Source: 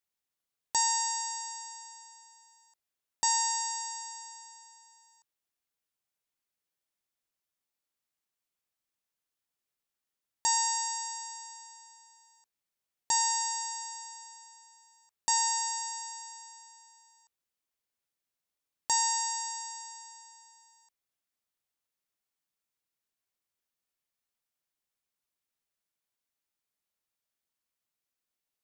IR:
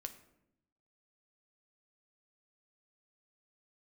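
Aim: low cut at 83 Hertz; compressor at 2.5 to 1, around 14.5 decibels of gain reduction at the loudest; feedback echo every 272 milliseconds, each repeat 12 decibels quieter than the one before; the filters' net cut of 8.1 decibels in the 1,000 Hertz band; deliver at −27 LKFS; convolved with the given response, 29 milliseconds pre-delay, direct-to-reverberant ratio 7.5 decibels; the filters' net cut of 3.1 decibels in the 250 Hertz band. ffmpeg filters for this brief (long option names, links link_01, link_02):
-filter_complex "[0:a]highpass=83,equalizer=frequency=250:width_type=o:gain=-3.5,equalizer=frequency=1000:width_type=o:gain=-8.5,acompressor=threshold=-48dB:ratio=2.5,aecho=1:1:272|544|816:0.251|0.0628|0.0157,asplit=2[link_01][link_02];[1:a]atrim=start_sample=2205,adelay=29[link_03];[link_02][link_03]afir=irnorm=-1:irlink=0,volume=-4dB[link_04];[link_01][link_04]amix=inputs=2:normalize=0,volume=14.5dB"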